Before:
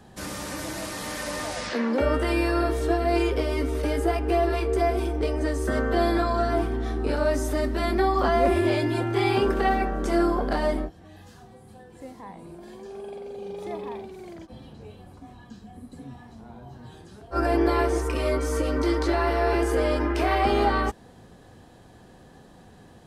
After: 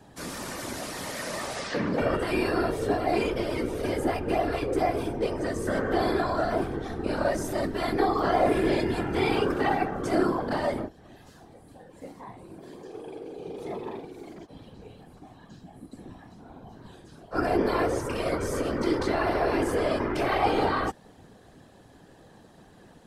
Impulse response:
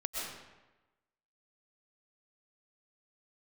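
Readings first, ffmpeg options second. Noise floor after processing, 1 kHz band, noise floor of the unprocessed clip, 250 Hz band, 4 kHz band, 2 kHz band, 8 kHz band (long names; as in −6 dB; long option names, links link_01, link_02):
−54 dBFS, −2.0 dB, −51 dBFS, −2.5 dB, −2.0 dB, −2.0 dB, −2.0 dB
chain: -af "highpass=86,afftfilt=real='hypot(re,im)*cos(2*PI*random(0))':imag='hypot(re,im)*sin(2*PI*random(1))':win_size=512:overlap=0.75,volume=4dB"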